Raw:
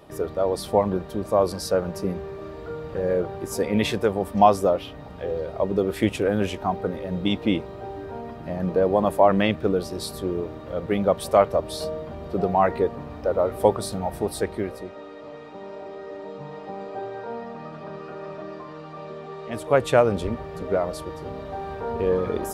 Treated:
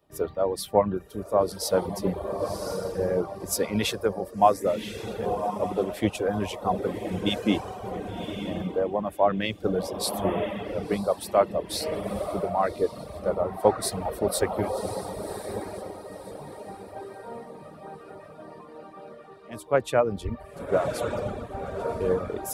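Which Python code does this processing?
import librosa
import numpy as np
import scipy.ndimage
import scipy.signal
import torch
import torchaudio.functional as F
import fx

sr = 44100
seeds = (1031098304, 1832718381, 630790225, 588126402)

y = fx.high_shelf(x, sr, hz=11000.0, db=6.5)
y = fx.echo_diffused(y, sr, ms=1104, feedback_pct=50, wet_db=-5)
y = fx.dereverb_blind(y, sr, rt60_s=0.75)
y = fx.rider(y, sr, range_db=4, speed_s=0.5)
y = fx.band_widen(y, sr, depth_pct=70)
y = y * 10.0 ** (-3.5 / 20.0)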